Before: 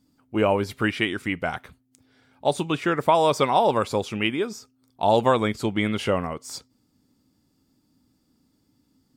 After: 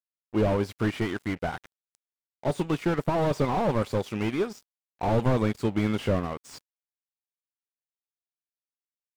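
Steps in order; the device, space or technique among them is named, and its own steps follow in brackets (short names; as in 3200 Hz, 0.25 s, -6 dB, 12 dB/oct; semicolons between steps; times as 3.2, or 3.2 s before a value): early transistor amplifier (crossover distortion -41 dBFS; slew limiter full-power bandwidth 44 Hz)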